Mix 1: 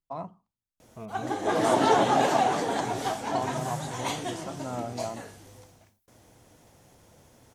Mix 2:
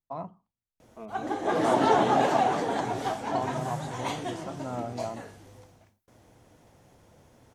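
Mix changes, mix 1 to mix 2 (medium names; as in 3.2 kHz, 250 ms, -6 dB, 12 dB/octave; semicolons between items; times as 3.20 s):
second voice: add steep high-pass 210 Hz; master: add treble shelf 3.9 kHz -8 dB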